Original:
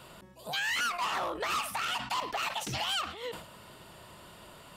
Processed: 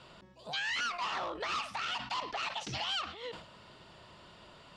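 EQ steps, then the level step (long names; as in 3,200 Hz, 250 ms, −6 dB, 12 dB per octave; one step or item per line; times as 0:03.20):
transistor ladder low-pass 6,600 Hz, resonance 25%
+2.0 dB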